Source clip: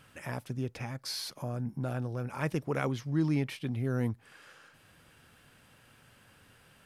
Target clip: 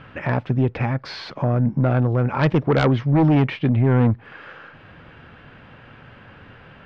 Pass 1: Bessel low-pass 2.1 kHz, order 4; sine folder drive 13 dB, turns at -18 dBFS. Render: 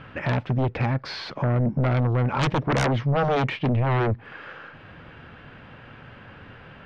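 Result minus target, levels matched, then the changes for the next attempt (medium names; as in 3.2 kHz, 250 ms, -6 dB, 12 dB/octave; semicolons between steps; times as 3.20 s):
sine folder: distortion +13 dB
change: sine folder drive 13 dB, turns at -11.5 dBFS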